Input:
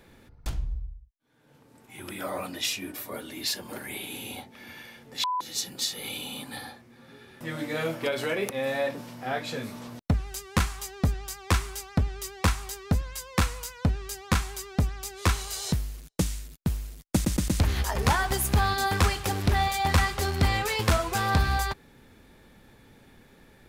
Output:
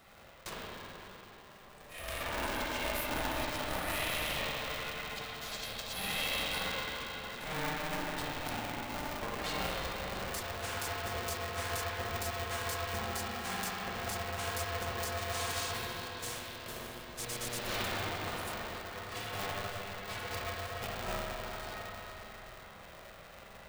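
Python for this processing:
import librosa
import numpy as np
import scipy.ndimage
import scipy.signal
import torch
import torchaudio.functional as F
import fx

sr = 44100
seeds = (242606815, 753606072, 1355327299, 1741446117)

y = scipy.signal.sosfilt(scipy.signal.butter(2, 280.0, 'highpass', fs=sr, output='sos'), x)
y = fx.over_compress(y, sr, threshold_db=-36.0, ratio=-0.5)
y = fx.echo_bbd(y, sr, ms=166, stages=2048, feedback_pct=82, wet_db=-13.0)
y = fx.rev_spring(y, sr, rt60_s=3.8, pass_ms=(39, 45, 51), chirp_ms=20, drr_db=-7.0)
y = y * np.sign(np.sin(2.0 * np.pi * 300.0 * np.arange(len(y)) / sr))
y = y * librosa.db_to_amplitude(-7.5)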